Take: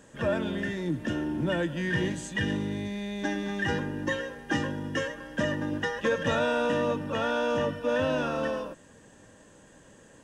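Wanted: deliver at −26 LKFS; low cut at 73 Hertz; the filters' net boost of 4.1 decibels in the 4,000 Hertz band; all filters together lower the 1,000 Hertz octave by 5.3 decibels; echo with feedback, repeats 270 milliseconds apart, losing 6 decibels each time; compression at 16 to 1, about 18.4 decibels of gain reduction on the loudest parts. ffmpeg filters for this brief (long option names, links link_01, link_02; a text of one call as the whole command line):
ffmpeg -i in.wav -af "highpass=73,equalizer=frequency=1000:width_type=o:gain=-7.5,equalizer=frequency=4000:width_type=o:gain=6.5,acompressor=threshold=-42dB:ratio=16,aecho=1:1:270|540|810|1080|1350|1620:0.501|0.251|0.125|0.0626|0.0313|0.0157,volume=19dB" out.wav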